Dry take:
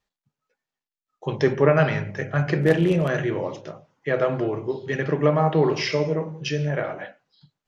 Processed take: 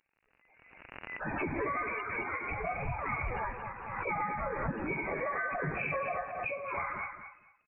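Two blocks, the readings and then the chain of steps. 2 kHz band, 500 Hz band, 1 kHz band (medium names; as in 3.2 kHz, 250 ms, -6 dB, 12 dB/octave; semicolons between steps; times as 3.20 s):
-5.0 dB, -16.5 dB, -4.5 dB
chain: spectrum inverted on a logarithmic axis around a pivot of 1 kHz; high-pass 590 Hz 12 dB/octave; band-stop 930 Hz, Q 20; peak limiter -18.5 dBFS, peak gain reduction 8.5 dB; compression 3:1, threshold -32 dBFS, peak gain reduction 6.5 dB; crackle 48 per s -56 dBFS; on a send: feedback delay 225 ms, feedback 20%, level -9 dB; on the sum: careless resampling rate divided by 4×, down none, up zero stuff; frequency inversion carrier 2.8 kHz; swell ahead of each attack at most 40 dB/s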